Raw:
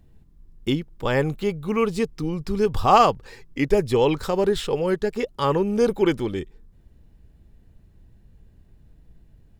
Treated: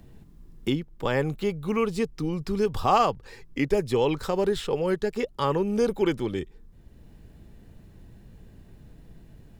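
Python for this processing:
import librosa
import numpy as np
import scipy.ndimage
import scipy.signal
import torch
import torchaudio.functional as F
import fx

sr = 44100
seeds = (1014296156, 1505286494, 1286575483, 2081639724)

y = fx.band_squash(x, sr, depth_pct=40)
y = y * librosa.db_to_amplitude(-3.5)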